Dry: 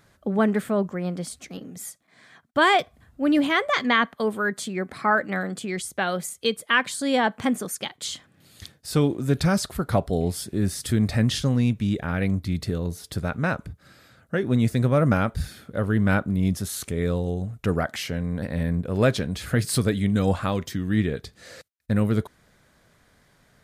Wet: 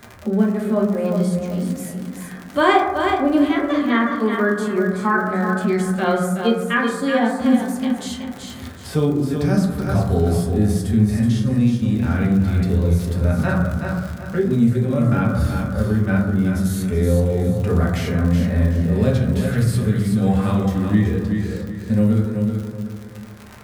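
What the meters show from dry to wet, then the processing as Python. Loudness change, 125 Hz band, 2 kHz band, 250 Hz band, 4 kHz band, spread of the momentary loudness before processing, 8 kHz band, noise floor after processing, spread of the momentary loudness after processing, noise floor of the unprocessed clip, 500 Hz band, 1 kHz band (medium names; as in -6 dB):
+5.0 dB, +7.0 dB, +1.0 dB, +7.0 dB, -2.5 dB, 10 LU, -2.5 dB, -36 dBFS, 8 LU, -61 dBFS, +5.0 dB, +3.5 dB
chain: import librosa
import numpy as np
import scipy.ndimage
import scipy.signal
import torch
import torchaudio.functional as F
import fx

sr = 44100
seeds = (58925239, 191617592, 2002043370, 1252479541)

y = fx.vibrato(x, sr, rate_hz=1.8, depth_cents=13.0)
y = fx.hpss(y, sr, part='percussive', gain_db=-13)
y = fx.high_shelf(y, sr, hz=12000.0, db=5.0)
y = fx.dmg_crackle(y, sr, seeds[0], per_s=57.0, level_db=-33.0)
y = fx.rider(y, sr, range_db=4, speed_s=0.5)
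y = fx.hum_notches(y, sr, base_hz=60, count=2)
y = fx.echo_feedback(y, sr, ms=375, feedback_pct=26, wet_db=-7.0)
y = fx.rev_fdn(y, sr, rt60_s=0.95, lf_ratio=1.35, hf_ratio=0.35, size_ms=77.0, drr_db=-2.0)
y = fx.band_squash(y, sr, depth_pct=40)
y = y * 10.0 ** (1.0 / 20.0)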